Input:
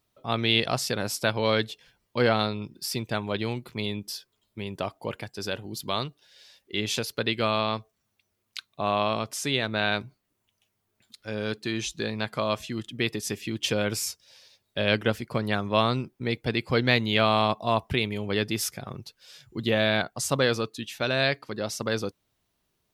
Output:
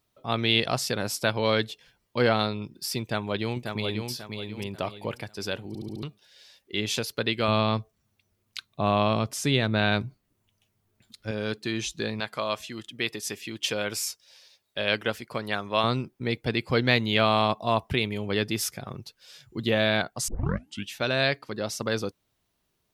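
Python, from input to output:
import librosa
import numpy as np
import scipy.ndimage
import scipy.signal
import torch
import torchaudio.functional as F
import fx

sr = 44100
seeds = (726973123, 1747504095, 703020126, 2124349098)

y = fx.echo_throw(x, sr, start_s=3.02, length_s=1.07, ms=540, feedback_pct=35, wet_db=-5.5)
y = fx.low_shelf(y, sr, hz=260.0, db=10.0, at=(7.48, 11.31))
y = fx.low_shelf(y, sr, hz=330.0, db=-10.0, at=(12.2, 15.84))
y = fx.edit(y, sr, fx.stutter_over(start_s=5.68, slice_s=0.07, count=5),
    fx.tape_start(start_s=20.28, length_s=0.6), tone=tone)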